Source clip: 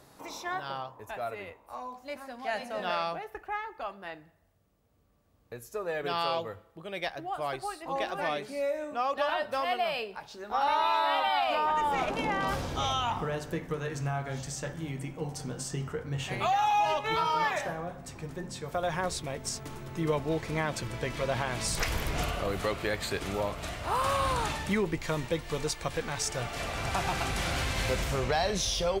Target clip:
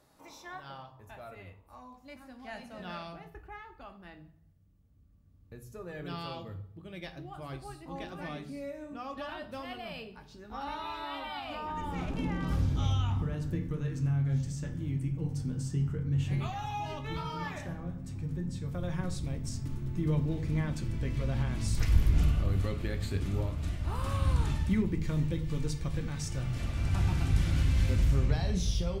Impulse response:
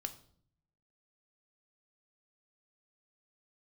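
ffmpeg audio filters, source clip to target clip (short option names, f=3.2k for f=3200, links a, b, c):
-filter_complex "[0:a]asubboost=boost=7.5:cutoff=230[a];[1:a]atrim=start_sample=2205[b];[a][b]afir=irnorm=-1:irlink=0,volume=-7.5dB"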